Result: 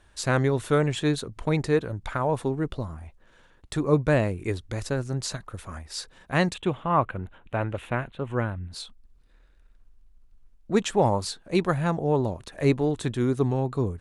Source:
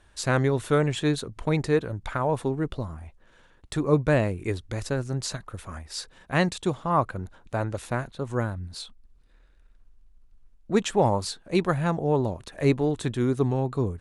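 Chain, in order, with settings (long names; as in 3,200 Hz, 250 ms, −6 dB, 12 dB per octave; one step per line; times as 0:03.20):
0:06.54–0:08.72: high shelf with overshoot 3,800 Hz −9.5 dB, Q 3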